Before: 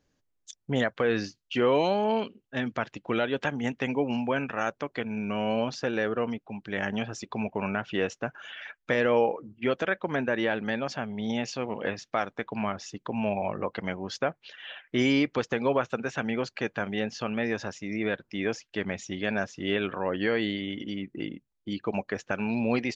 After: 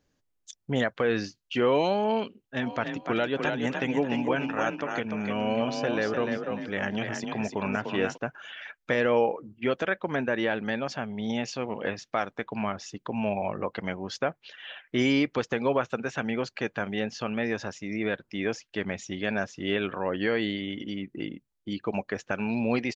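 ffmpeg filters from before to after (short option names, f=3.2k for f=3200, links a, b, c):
-filter_complex "[0:a]asplit=3[a][b][c];[a]afade=t=out:st=2.61:d=0.02[d];[b]asplit=5[e][f][g][h][i];[f]adelay=297,afreqshift=31,volume=-5dB[j];[g]adelay=594,afreqshift=62,volume=-15.2dB[k];[h]adelay=891,afreqshift=93,volume=-25.3dB[l];[i]adelay=1188,afreqshift=124,volume=-35.5dB[m];[e][j][k][l][m]amix=inputs=5:normalize=0,afade=t=in:st=2.61:d=0.02,afade=t=out:st=8.16:d=0.02[n];[c]afade=t=in:st=8.16:d=0.02[o];[d][n][o]amix=inputs=3:normalize=0"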